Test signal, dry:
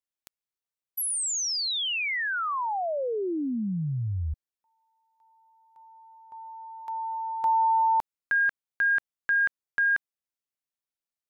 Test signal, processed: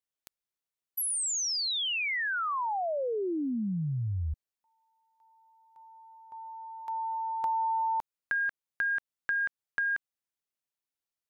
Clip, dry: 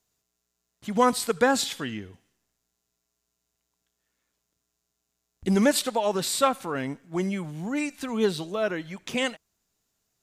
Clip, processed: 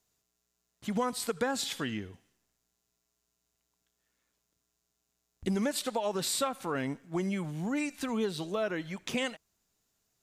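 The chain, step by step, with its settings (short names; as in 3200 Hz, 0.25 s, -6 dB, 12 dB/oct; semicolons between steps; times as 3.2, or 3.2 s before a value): compressor 5:1, threshold -27 dBFS; gain -1 dB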